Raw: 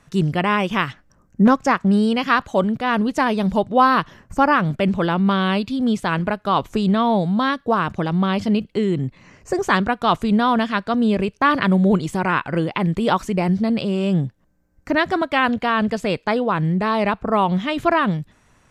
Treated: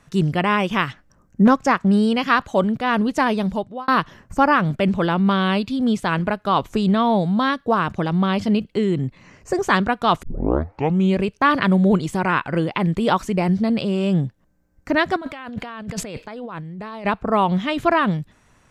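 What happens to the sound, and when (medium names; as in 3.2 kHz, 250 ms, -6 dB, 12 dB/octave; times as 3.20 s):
3.33–3.88 s: fade out
10.23 s: tape start 0.96 s
15.16–17.05 s: compressor with a negative ratio -32 dBFS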